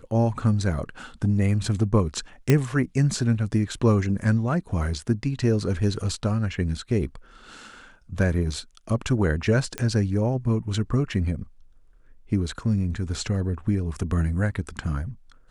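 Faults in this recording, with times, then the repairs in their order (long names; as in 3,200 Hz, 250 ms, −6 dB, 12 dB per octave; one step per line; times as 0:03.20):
0:02.50: click −6 dBFS
0:09.78: click −13 dBFS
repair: click removal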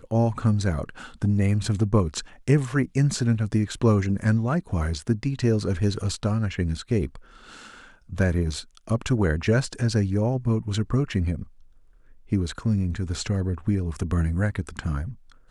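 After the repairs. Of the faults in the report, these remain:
none of them is left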